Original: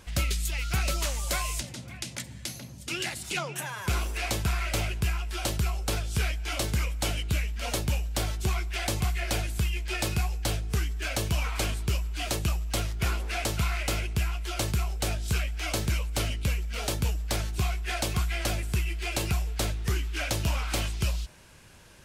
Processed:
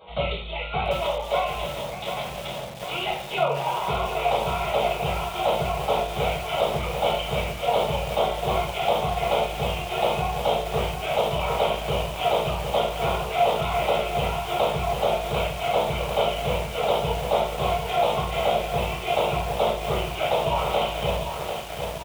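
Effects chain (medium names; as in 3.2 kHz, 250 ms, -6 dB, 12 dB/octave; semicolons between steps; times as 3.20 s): high-pass 460 Hz 12 dB/octave; tilt EQ -3 dB/octave; in parallel at -2 dB: gain riding within 5 dB 0.5 s; on the sum: static phaser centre 700 Hz, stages 4; reverberation RT60 0.55 s, pre-delay 4 ms, DRR -9 dB; resampled via 8 kHz; bit-crushed delay 745 ms, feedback 80%, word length 6-bit, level -6.5 dB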